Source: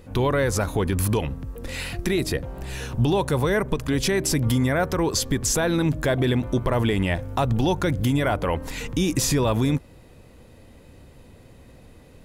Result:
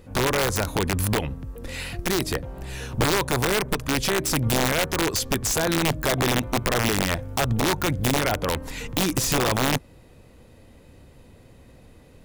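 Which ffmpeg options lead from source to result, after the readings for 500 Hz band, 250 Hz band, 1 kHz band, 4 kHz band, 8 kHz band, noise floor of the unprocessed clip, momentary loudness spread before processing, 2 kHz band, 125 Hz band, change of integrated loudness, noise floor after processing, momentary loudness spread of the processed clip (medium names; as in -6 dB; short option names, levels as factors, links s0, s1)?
-1.5 dB, -3.0 dB, +2.0 dB, +4.0 dB, +1.5 dB, -49 dBFS, 8 LU, +3.0 dB, -3.5 dB, 0.0 dB, -51 dBFS, 8 LU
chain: -af "aeval=exprs='0.299*(cos(1*acos(clip(val(0)/0.299,-1,1)))-cos(1*PI/2))+0.106*(cos(2*acos(clip(val(0)/0.299,-1,1)))-cos(2*PI/2))+0.0168*(cos(3*acos(clip(val(0)/0.299,-1,1)))-cos(3*PI/2))+0.0668*(cos(4*acos(clip(val(0)/0.299,-1,1)))-cos(4*PI/2))+0.0211*(cos(6*acos(clip(val(0)/0.299,-1,1)))-cos(6*PI/2))':c=same,aeval=exprs='(mod(5.31*val(0)+1,2)-1)/5.31':c=same"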